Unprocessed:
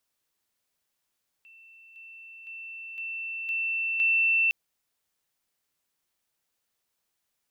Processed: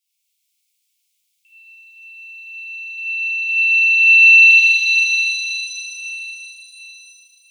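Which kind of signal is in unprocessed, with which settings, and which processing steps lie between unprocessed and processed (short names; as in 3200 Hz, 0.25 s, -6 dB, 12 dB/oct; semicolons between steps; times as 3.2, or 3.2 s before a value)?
level ladder 2680 Hz -50 dBFS, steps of 6 dB, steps 6, 0.51 s 0.00 s
Chebyshev high-pass 2200 Hz, order 6; dynamic EQ 3000 Hz, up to +6 dB, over -39 dBFS, Q 0.86; shimmer reverb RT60 3.9 s, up +7 st, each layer -8 dB, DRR -11 dB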